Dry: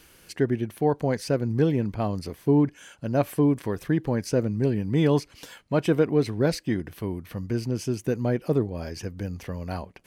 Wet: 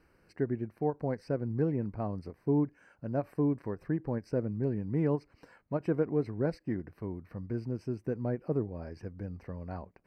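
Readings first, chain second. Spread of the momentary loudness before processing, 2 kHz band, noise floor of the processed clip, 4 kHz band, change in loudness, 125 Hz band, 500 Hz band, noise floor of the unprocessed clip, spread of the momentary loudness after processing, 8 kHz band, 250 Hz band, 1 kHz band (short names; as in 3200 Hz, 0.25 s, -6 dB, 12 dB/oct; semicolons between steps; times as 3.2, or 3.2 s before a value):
12 LU, -12.0 dB, -68 dBFS, under -20 dB, -8.0 dB, -8.0 dB, -8.0 dB, -56 dBFS, 11 LU, under -25 dB, -8.0 dB, -9.0 dB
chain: running mean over 13 samples; ending taper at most 450 dB/s; gain -7.5 dB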